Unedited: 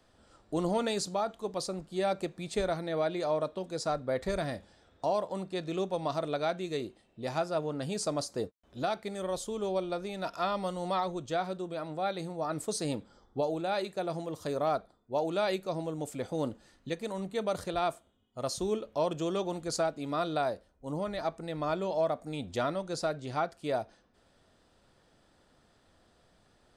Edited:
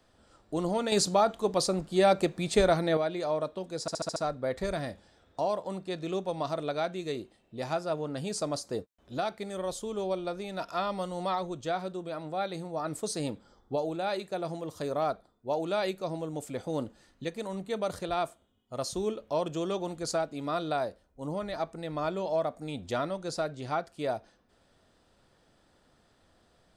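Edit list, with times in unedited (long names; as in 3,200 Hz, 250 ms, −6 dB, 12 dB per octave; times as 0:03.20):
0:00.92–0:02.97: clip gain +7.5 dB
0:03.81: stutter 0.07 s, 6 plays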